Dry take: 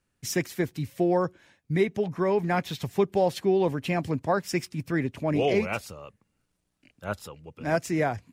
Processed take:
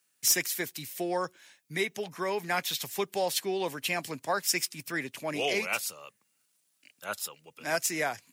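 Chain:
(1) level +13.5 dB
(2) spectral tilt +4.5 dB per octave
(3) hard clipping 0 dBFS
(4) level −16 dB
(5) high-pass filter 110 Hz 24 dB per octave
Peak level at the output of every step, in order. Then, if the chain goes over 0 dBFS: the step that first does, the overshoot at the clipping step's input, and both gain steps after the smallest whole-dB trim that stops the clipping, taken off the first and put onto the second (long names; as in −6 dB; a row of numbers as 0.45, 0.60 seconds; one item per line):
+1.0, +6.5, 0.0, −16.0, −15.5 dBFS
step 1, 6.5 dB
step 1 +6.5 dB, step 4 −9 dB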